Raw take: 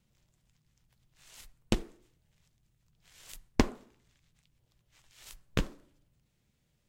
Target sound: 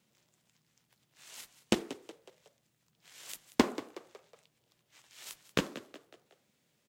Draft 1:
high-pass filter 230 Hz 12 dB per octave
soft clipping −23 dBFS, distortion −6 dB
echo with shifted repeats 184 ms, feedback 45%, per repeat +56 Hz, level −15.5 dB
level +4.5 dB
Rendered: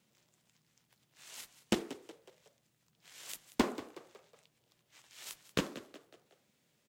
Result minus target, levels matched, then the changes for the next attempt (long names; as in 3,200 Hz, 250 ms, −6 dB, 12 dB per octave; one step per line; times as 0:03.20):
soft clipping: distortion +8 dB
change: soft clipping −14.5 dBFS, distortion −14 dB